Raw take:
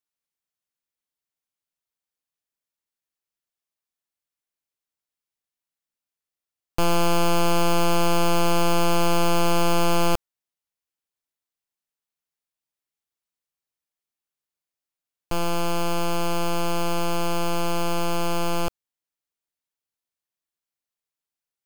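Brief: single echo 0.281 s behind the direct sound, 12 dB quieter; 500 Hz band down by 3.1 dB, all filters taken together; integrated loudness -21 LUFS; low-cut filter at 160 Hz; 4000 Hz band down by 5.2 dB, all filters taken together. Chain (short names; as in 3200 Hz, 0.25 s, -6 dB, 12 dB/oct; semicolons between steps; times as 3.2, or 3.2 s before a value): HPF 160 Hz; bell 500 Hz -4 dB; bell 4000 Hz -7.5 dB; echo 0.281 s -12 dB; gain +5 dB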